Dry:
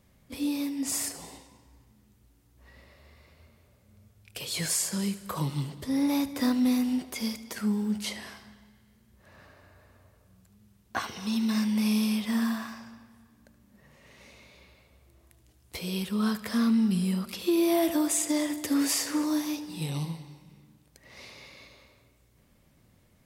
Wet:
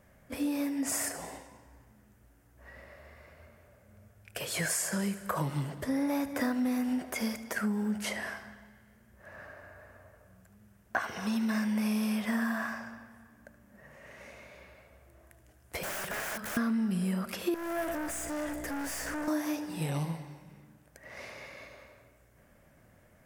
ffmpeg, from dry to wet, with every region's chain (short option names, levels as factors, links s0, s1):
-filter_complex "[0:a]asettb=1/sr,asplit=3[s0][s1][s2];[s0]atrim=end=15.834[s3];[s1]atrim=start=15.83:end=16.57,asetpts=PTS-STARTPTS,afade=t=in:d=0.004:c=qsin,afade=t=out:st=0.736:d=0.004:c=qsin,equalizer=f=66:t=o:w=0.24:g=-15,aeval=exprs='(mod(50.1*val(0)+1,2)-1)/50.1':c=same[s4];[s2]atrim=start=16.566[s5];[s3][s4]acrossfade=d=0.004:c1=hsin:c2=qsin[s6];[s6][s5]acrossfade=d=0.004:c1=qsin:c2=hsin,asettb=1/sr,asplit=3[s7][s8][s9];[s7]atrim=end=17.544[s10];[s8]atrim=start=17.54:end=19.28,asetpts=PTS-STARTPTS,afade=t=in:d=0.004:c=qsin,afade=t=out:st=1.736:d=0.004:c=qsin,highpass=170,aeval=exprs='val(0)+0.00794*(sin(2*PI*60*n/s)+sin(2*PI*2*60*n/s)/2+sin(2*PI*3*60*n/s)/3+sin(2*PI*4*60*n/s)/4+sin(2*PI*5*60*n/s)/5)':c=same,aeval=exprs='(tanh(63.1*val(0)+0.35)-tanh(0.35))/63.1':c=same[s11];[s9]atrim=start=19.276[s12];[s10][s11]acrossfade=d=0.004:c1=hsin:c2=qsin[s13];[s13][s12]acrossfade=d=0.004:c1=qsin:c2=hsin,equalizer=f=630:t=o:w=0.67:g=9,equalizer=f=1600:t=o:w=0.67:g=10,equalizer=f=4000:t=o:w=0.67:g=-8,acompressor=threshold=0.0398:ratio=4"